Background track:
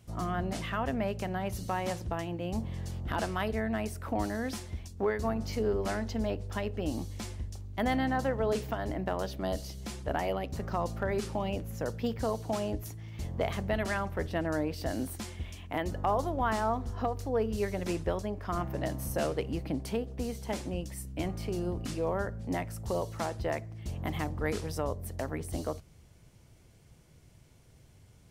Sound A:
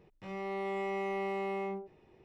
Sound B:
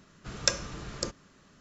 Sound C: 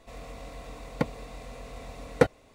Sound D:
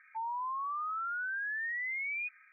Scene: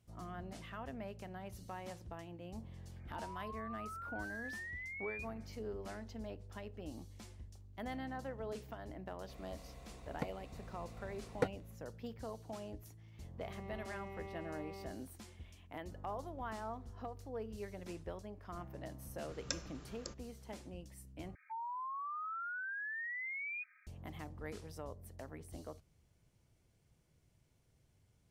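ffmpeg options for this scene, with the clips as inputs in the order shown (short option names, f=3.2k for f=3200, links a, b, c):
-filter_complex "[4:a]asplit=2[a][b];[0:a]volume=-14dB[c];[a]equalizer=f=960:t=o:w=0.77:g=-3.5[d];[c]asplit=2[e][f];[e]atrim=end=21.354[g];[b]atrim=end=2.52,asetpts=PTS-STARTPTS,volume=-6dB[h];[f]atrim=start=23.866[i];[d]atrim=end=2.52,asetpts=PTS-STARTPTS,volume=-9.5dB,afade=t=in:d=0.004:c=hsin,afade=t=out:st=2.516:d=0.004:c=hsin,adelay=2960[j];[3:a]atrim=end=2.54,asetpts=PTS-STARTPTS,volume=-13.5dB,afade=t=in:d=0.004:c=hsin,afade=t=out:st=2.536:d=0.004:c=hsin,adelay=9210[k];[1:a]atrim=end=2.24,asetpts=PTS-STARTPTS,volume=-14.5dB,afade=t=in:d=0.004:c=hsin,afade=t=out:st=2.236:d=0.004:c=hsin,adelay=13170[l];[2:a]atrim=end=1.6,asetpts=PTS-STARTPTS,volume=-14.5dB,afade=t=in:d=0.004:c=hsin,afade=t=out:st=1.596:d=0.004:c=hsin,adelay=19030[m];[g][h]acrossfade=d=0.004:c1=hsin:c2=hsin[n];[n][i]acrossfade=d=0.004:c1=hsin:c2=hsin[o];[o][j][k][l][m]amix=inputs=5:normalize=0"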